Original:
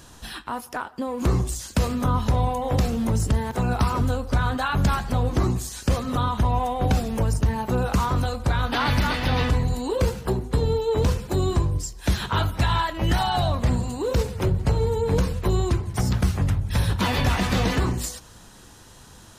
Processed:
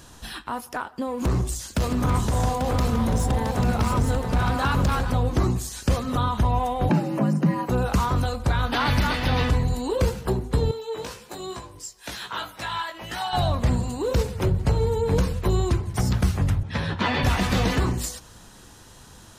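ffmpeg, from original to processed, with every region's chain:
-filter_complex "[0:a]asettb=1/sr,asplit=3[a][b][c];[a]atrim=end=1.224[d];[b]atrim=start=1.22:end=5.11,asetpts=PTS-STARTPTS,afade=t=in:d=0.004:c=qsin,afade=t=out:st=3.886:d=0.004:c=qsin,asoftclip=type=hard:threshold=-18.5dB,aecho=1:1:669|841:0.473|0.501,atrim=end_sample=171549[e];[c]atrim=start=5.106[f];[d][e]acrossfade=d=0.004:c1=hsin:c2=qsin[g];[g][f]acrossfade=d=0.004:c1=qsin:c2=hsin,asettb=1/sr,asplit=3[h][i][j];[h]atrim=end=6.894[k];[i]atrim=start=6.89:end=7.69,asetpts=PTS-STARTPTS,afade=t=in:d=0.004:c=qsin,afade=t=out:st=0.796:d=0.004:c=qsin,bandreject=f=3.3k:w=5.6,acrossover=split=3300[l][m];[m]acompressor=threshold=-50dB:ratio=4:attack=1:release=60[n];[l][n]amix=inputs=2:normalize=0,afreqshift=100[o];[j]atrim=start=7.686[p];[k][o]acrossfade=d=0.004:c1=hsin:c2=qsin[q];[q][p]acrossfade=d=0.004:c1=qsin:c2=hsin,asettb=1/sr,asplit=3[r][s][t];[r]atrim=end=10.714[u];[s]atrim=start=10.71:end=13.33,asetpts=PTS-STARTPTS,afade=t=in:d=0.004:c=qsin,afade=t=out:st=2.616:d=0.004:c=qsin,highpass=f=820:p=1,flanger=delay=16:depth=2.9:speed=1.2[v];[t]atrim=start=13.326[w];[u][v]acrossfade=d=0.004:c1=hsin:c2=qsin[x];[x][w]acrossfade=d=0.004:c1=qsin:c2=hsin,asettb=1/sr,asplit=3[y][z][aa];[y]atrim=end=16.634[ab];[z]atrim=start=16.63:end=17.23,asetpts=PTS-STARTPTS,afade=t=in:d=0.004:c=qsin,afade=t=out:st=0.596:d=0.004:c=qsin,highpass=130,lowpass=3.9k,equalizer=f=1.8k:t=o:w=0.24:g=3.5,asplit=2[ac][ad];[ad]adelay=13,volume=-6.5dB[ae];[ac][ae]amix=inputs=2:normalize=0,atrim=end_sample=26460[af];[aa]atrim=start=17.226[ag];[ab][af]acrossfade=d=0.004:c1=hsin:c2=qsin[ah];[ah][ag]acrossfade=d=0.004:c1=qsin:c2=hsin"

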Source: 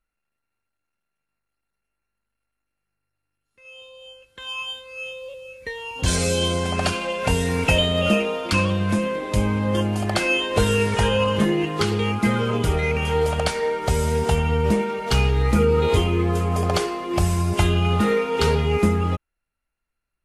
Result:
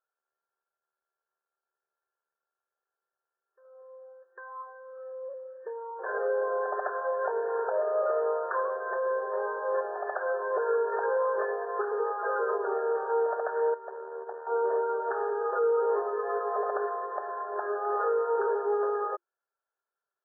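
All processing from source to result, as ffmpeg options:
-filter_complex "[0:a]asettb=1/sr,asplit=3[a][b][c];[a]atrim=end=13.744[d];[b]atrim=start=13.74:end=14.47,asetpts=PTS-STARTPTS,afade=t=in:d=0.004:c=qsin,afade=t=out:st=0.726:d=0.004:c=qsin,agate=range=-10dB:threshold=-23dB:ratio=16:release=100:detection=peak,acompressor=threshold=-29dB:ratio=2.5:attack=3.2:release=140:knee=1:detection=peak,aeval=exprs='(tanh(15.8*val(0)+0.65)-tanh(0.65))/15.8':c=same[e];[c]atrim=start=14.466[f];[d][e]acrossfade=d=0.004:c1=hsin:c2=qsin[g];[g][f]acrossfade=d=0.004:c1=qsin:c2=hsin,afftfilt=real='re*between(b*sr/4096,360,1800)':imag='im*between(b*sr/4096,360,1800)':win_size=4096:overlap=0.75,alimiter=limit=-17.5dB:level=0:latency=1:release=106,volume=-2dB"

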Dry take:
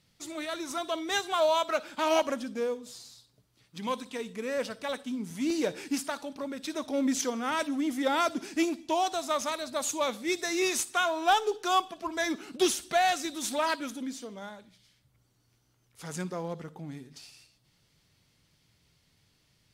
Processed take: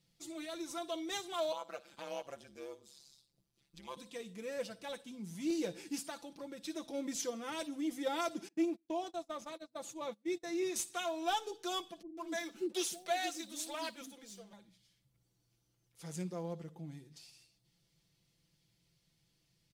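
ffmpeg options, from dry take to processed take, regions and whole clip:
-filter_complex "[0:a]asettb=1/sr,asplit=3[a][b][c];[a]atrim=end=1.524[d];[b]atrim=start=1.52:end=3.97,asetpts=PTS-STARTPTS,afade=t=in:d=0.004:c=qsin,afade=t=out:st=2.446:d=0.004:c=qsin,aecho=1:1:5.1:0.31,atrim=end_sample=108045,acrossover=split=450|1700|4400[e][f][g][h];[e]acompressor=threshold=-51dB:ratio=3[i];[f]acompressor=threshold=-27dB:ratio=3[j];[g]acompressor=threshold=-44dB:ratio=3[k];[h]acompressor=threshold=-52dB:ratio=3[l];[i][j][k][l]amix=inputs=4:normalize=0,tremolo=f=140:d=0.919[m];[c]atrim=start=3.966[n];[d][m]acrossfade=d=0.004:c1=hsin:c2=qsin[o];[o][n]acrossfade=d=0.004:c1=qsin:c2=hsin,asettb=1/sr,asplit=3[p][q][r];[p]atrim=end=8.484[s];[q]atrim=start=8.48:end=10.76,asetpts=PTS-STARTPTS,afade=t=in:d=0.004:c=qsin,afade=t=out:st=2.276:d=0.004:c=qsin,highpass=47,agate=range=-26dB:threshold=-36dB:ratio=16:release=100:detection=peak,highshelf=f=2.4k:g=-11.5[t];[r]atrim=start=10.756[u];[s][t]acrossfade=d=0.004:c1=hsin:c2=qsin[v];[v][u]acrossfade=d=0.004:c1=qsin:c2=hsin,asettb=1/sr,asplit=3[w][x][y];[w]atrim=end=12.024[z];[x]atrim=start=12.02:end=14.53,asetpts=PTS-STARTPTS,afade=t=in:d=0.004:c=qsin,afade=t=out:st=2.506:d=0.004:c=qsin,highpass=f=200:w=0.5412,highpass=f=200:w=1.3066,aeval=exprs='sgn(val(0))*max(abs(val(0))-0.00188,0)':c=same,acrossover=split=370[aa][ab];[ab]adelay=150[ac];[aa][ac]amix=inputs=2:normalize=0,atrim=end_sample=110691[ad];[y]atrim=start=14.526[ae];[z][ad]acrossfade=d=0.004:c1=hsin:c2=qsin[af];[af][ae]acrossfade=d=0.004:c1=qsin:c2=hsin,equalizer=f=1.3k:w=0.78:g=-6.5,aecho=1:1:5.9:0.65,volume=-8dB"

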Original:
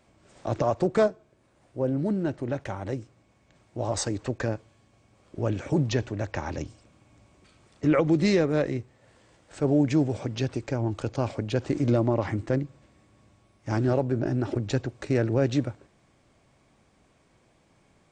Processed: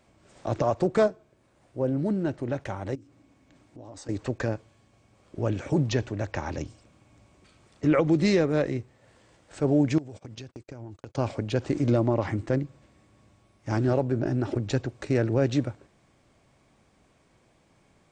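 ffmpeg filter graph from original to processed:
-filter_complex "[0:a]asettb=1/sr,asplit=3[a][b][c];[a]atrim=end=2.954[d];[b]atrim=start=2.95:end=4.09,asetpts=PTS-STARTPTS,afade=t=in:d=0.004:c=qsin,afade=t=out:st=1.136:d=0.004:c=qsin,equalizer=f=280:t=o:w=0.29:g=14,acompressor=threshold=-50dB:ratio=2.5:attack=3.2:release=140:knee=1:detection=peak[e];[c]atrim=start=4.086[f];[d][e]acrossfade=d=0.004:c1=hsin:c2=qsin[g];[g][f]acrossfade=d=0.004:c1=qsin:c2=hsin,asettb=1/sr,asplit=3[h][i][j];[h]atrim=end=9.984[k];[i]atrim=start=9.98:end=11.15,asetpts=PTS-STARTPTS,afade=t=in:d=0.004:c=qsin,afade=t=out:st=1.166:d=0.004:c=qsin,agate=range=-44dB:threshold=-36dB:ratio=16:release=100:detection=peak,highshelf=f=6.7k:g=7.5,acompressor=threshold=-38dB:ratio=6:attack=3.2:release=140:knee=1:detection=peak[l];[j]atrim=start=11.146[m];[k][l]acrossfade=d=0.004:c1=hsin:c2=qsin[n];[n][m]acrossfade=d=0.004:c1=qsin:c2=hsin"

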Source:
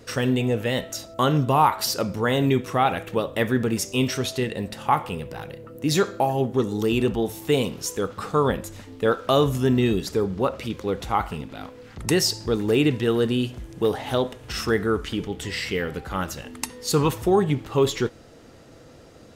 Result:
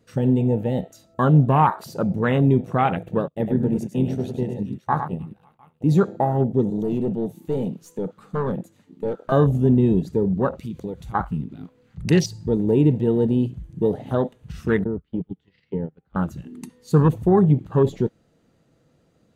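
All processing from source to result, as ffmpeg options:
-filter_complex "[0:a]asettb=1/sr,asplit=3[a][b][c];[a]atrim=end=3.284[d];[b]atrim=start=3.28:end=5.81,asetpts=PTS-STARTPTS,afade=t=in:d=0.004:c=qsin,afade=t=out:st=2.526:d=0.004:c=qsin,agate=range=-33dB:threshold=-27dB:ratio=3:release=100:detection=peak,tremolo=f=82:d=0.519,aecho=1:1:102|310|546|705:0.447|0.119|0.112|0.188,atrim=end_sample=111573[e];[c]atrim=start=5.806[f];[d][e]acrossfade=d=0.004:c1=hsin:c2=qsin[g];[g][f]acrossfade=d=0.004:c1=qsin:c2=hsin,asettb=1/sr,asplit=3[h][i][j];[h]atrim=end=6.704[k];[i]atrim=start=6.7:end=9.32,asetpts=PTS-STARTPTS,afade=t=in:d=0.004:c=qsin,afade=t=out:st=2.616:d=0.004:c=qsin,highpass=f=120:w=0.5412,highpass=f=120:w=1.3066,aeval=exprs='(tanh(10*val(0)+0.4)-tanh(0.4))/10':c=same[l];[j]atrim=start=9.316[m];[k][l]acrossfade=d=0.004:c1=hsin:c2=qsin[n];[n][m]acrossfade=d=0.004:c1=qsin:c2=hsin,asettb=1/sr,asplit=3[o][p][q];[o]atrim=end=10.584[r];[p]atrim=start=10.58:end=11.15,asetpts=PTS-STARTPTS,afade=t=in:d=0.004:c=qsin,afade=t=out:st=0.566:d=0.004:c=qsin,highshelf=f=2.9k:g=10.5,acompressor=threshold=-29dB:ratio=4:attack=3.2:release=140:knee=1:detection=peak[s];[q]atrim=start=11.146[t];[r][s]acrossfade=d=0.004:c1=hsin:c2=qsin[u];[u][t]acrossfade=d=0.004:c1=qsin:c2=hsin,asettb=1/sr,asplit=3[v][w][x];[v]atrim=end=14.844[y];[w]atrim=start=14.84:end=16.16,asetpts=PTS-STARTPTS,afade=t=in:d=0.004:c=qsin,afade=t=out:st=1.316:d=0.004:c=qsin,lowpass=f=4.5k:w=0.5412,lowpass=f=4.5k:w=1.3066,agate=range=-20dB:threshold=-28dB:ratio=16:release=100:detection=peak,acrossover=split=420|1300[z][aa][ab];[z]acompressor=threshold=-28dB:ratio=4[ac];[aa]acompressor=threshold=-36dB:ratio=4[ad];[ab]acompressor=threshold=-47dB:ratio=4[ae];[ac][ad][ae]amix=inputs=3:normalize=0[af];[x]atrim=start=16.156[ag];[y][af]acrossfade=d=0.004:c1=hsin:c2=qsin[ah];[ah][ag]acrossfade=d=0.004:c1=qsin:c2=hsin,afwtdn=0.0501,equalizer=f=170:w=1.7:g=10,bandreject=f=5.3k:w=8.3"

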